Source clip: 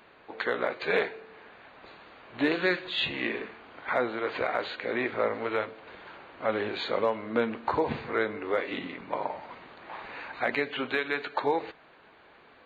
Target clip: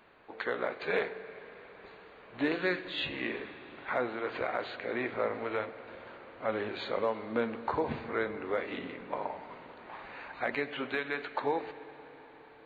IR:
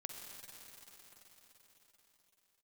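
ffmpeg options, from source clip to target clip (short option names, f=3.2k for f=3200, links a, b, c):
-filter_complex "[0:a]asplit=2[a][b];[1:a]atrim=start_sample=2205,lowpass=3.3k,lowshelf=f=110:g=10.5[c];[b][c]afir=irnorm=-1:irlink=0,volume=-5dB[d];[a][d]amix=inputs=2:normalize=0,volume=-6.5dB"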